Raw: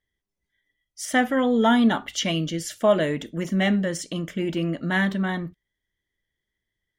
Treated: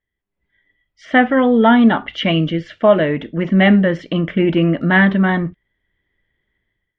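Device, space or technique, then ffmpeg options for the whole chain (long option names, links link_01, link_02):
action camera in a waterproof case: -af "lowpass=frequency=2900:width=0.5412,lowpass=frequency=2900:width=1.3066,dynaudnorm=framelen=160:gausssize=5:maxgain=13dB" -ar 44100 -c:a aac -b:a 96k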